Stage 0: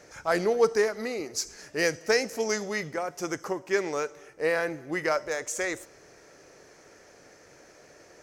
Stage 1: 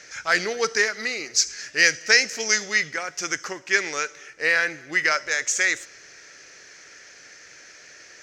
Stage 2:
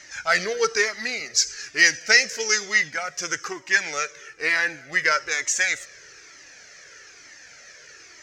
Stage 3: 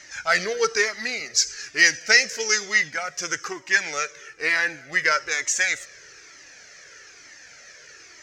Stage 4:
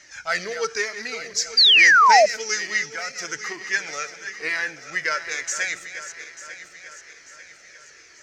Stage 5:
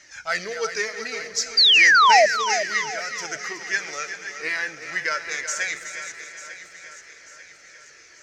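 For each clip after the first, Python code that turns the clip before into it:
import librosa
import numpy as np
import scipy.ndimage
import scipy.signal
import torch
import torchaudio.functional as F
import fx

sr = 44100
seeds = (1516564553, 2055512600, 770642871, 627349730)

y1 = fx.band_shelf(x, sr, hz=3200.0, db=16.0, octaves=2.7)
y1 = y1 * 10.0 ** (-4.0 / 20.0)
y2 = fx.comb_cascade(y1, sr, direction='falling', hz=1.1)
y2 = y2 * 10.0 ** (4.5 / 20.0)
y3 = y2
y4 = fx.reverse_delay_fb(y3, sr, ms=446, feedback_pct=65, wet_db=-11.0)
y4 = fx.spec_paint(y4, sr, seeds[0], shape='fall', start_s=1.57, length_s=0.69, low_hz=580.0, high_hz=4900.0, level_db=-9.0)
y4 = y4 * 10.0 ** (-4.0 / 20.0)
y5 = fx.echo_feedback(y4, sr, ms=373, feedback_pct=37, wet_db=-10.5)
y5 = y5 * 10.0 ** (-1.0 / 20.0)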